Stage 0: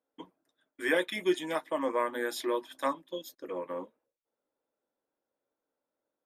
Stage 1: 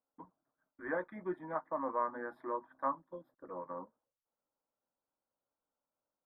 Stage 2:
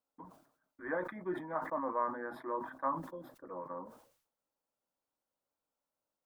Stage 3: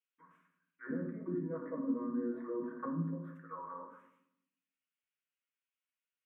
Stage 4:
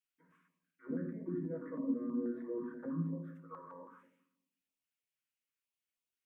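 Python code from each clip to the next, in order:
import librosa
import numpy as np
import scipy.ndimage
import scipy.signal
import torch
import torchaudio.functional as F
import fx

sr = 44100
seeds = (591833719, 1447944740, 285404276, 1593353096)

y1 = scipy.signal.sosfilt(scipy.signal.cheby2(4, 40, 2600.0, 'lowpass', fs=sr, output='sos'), x)
y1 = fx.peak_eq(y1, sr, hz=390.0, db=-13.5, octaves=1.6)
y1 = y1 * librosa.db_to_amplitude(2.0)
y2 = fx.sustainer(y1, sr, db_per_s=94.0)
y3 = fx.fixed_phaser(y2, sr, hz=1900.0, stages=4)
y3 = fx.auto_wah(y3, sr, base_hz=220.0, top_hz=2800.0, q=2.7, full_db=-38.0, direction='down')
y3 = fx.rev_fdn(y3, sr, rt60_s=0.72, lf_ratio=1.6, hf_ratio=0.5, size_ms=37.0, drr_db=-0.5)
y3 = y3 * librosa.db_to_amplitude(6.5)
y4 = fx.filter_held_notch(y3, sr, hz=6.2, low_hz=630.0, high_hz=1700.0)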